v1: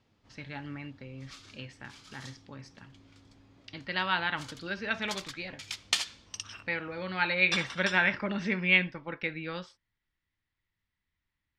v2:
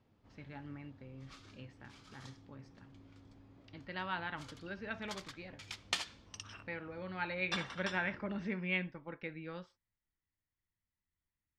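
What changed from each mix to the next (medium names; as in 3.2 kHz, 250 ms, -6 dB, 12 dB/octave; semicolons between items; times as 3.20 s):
speech -6.5 dB; master: add treble shelf 2 kHz -11 dB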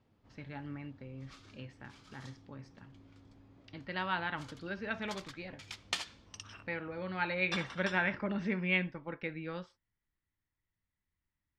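speech +4.5 dB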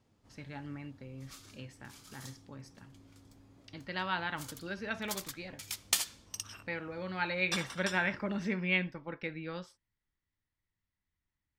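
master: remove low-pass 3.6 kHz 12 dB/octave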